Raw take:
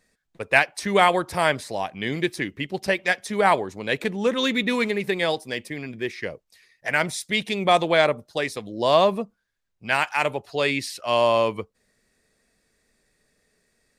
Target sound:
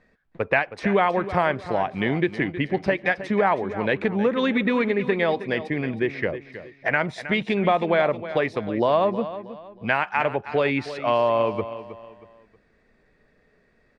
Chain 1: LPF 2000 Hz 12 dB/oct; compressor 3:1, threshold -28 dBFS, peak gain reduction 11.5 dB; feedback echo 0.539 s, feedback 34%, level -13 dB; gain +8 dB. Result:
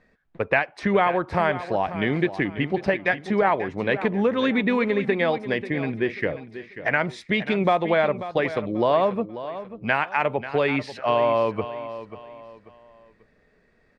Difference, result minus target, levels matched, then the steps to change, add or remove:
echo 0.222 s late
change: feedback echo 0.317 s, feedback 34%, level -13 dB

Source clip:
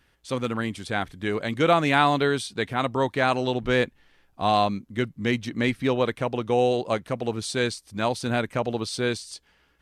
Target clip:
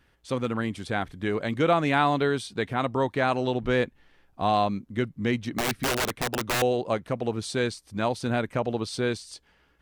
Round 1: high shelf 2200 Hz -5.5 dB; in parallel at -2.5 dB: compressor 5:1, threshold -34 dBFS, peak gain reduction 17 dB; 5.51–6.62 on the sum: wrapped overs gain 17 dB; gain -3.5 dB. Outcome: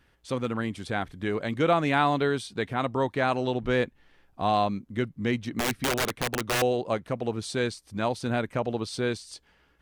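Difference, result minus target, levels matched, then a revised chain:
compressor: peak gain reduction +5 dB
high shelf 2200 Hz -5.5 dB; in parallel at -2.5 dB: compressor 5:1, threshold -27.5 dBFS, peak gain reduction 11.5 dB; 5.51–6.62 on the sum: wrapped overs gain 17 dB; gain -3.5 dB

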